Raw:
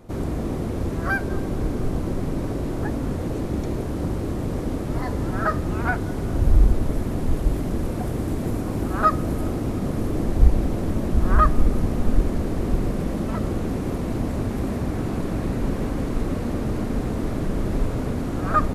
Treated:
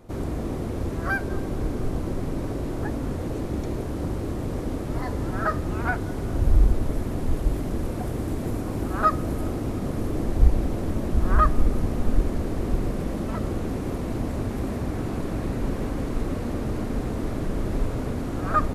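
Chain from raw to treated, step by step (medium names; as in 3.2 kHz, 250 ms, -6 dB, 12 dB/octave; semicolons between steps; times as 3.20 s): peaking EQ 180 Hz -2.5 dB 0.77 oct; trim -2 dB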